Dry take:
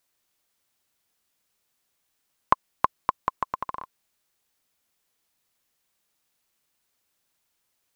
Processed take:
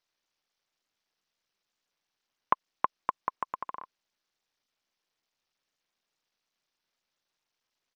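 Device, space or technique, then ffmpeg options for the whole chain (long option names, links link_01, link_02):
Bluetooth headset: -af "highpass=frequency=210:poles=1,aresample=16000,aresample=44100,volume=-5dB" -ar 48000 -c:a sbc -b:a 64k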